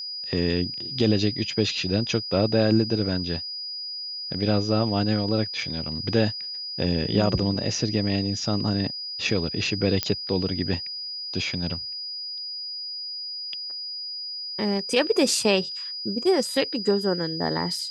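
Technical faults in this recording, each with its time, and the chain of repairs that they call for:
tone 4900 Hz -31 dBFS
10.03 pop -8 dBFS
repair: de-click; notch 4900 Hz, Q 30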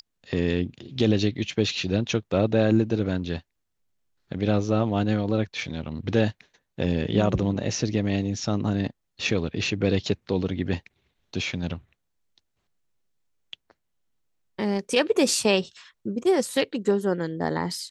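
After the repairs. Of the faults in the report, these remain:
none

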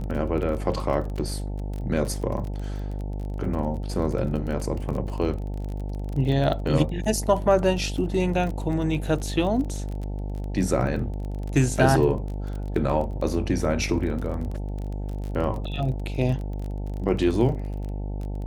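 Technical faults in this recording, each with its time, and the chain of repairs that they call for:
buzz 50 Hz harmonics 18 -30 dBFS
crackle 27/s -31 dBFS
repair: de-click; de-hum 50 Hz, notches 18

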